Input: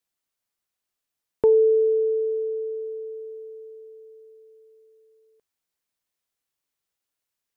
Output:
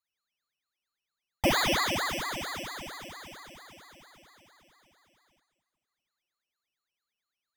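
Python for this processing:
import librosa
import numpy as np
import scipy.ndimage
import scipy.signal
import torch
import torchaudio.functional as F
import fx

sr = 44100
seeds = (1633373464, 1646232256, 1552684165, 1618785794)

y = np.r_[np.sort(x[:len(x) // 16 * 16].reshape(-1, 16), axis=1).ravel(), x[len(x) // 16 * 16:]]
y = fx.rev_fdn(y, sr, rt60_s=2.4, lf_ratio=1.0, hf_ratio=0.95, size_ms=19.0, drr_db=3.0)
y = fx.ring_lfo(y, sr, carrier_hz=840.0, swing_pct=90, hz=4.4)
y = y * librosa.db_to_amplitude(-5.5)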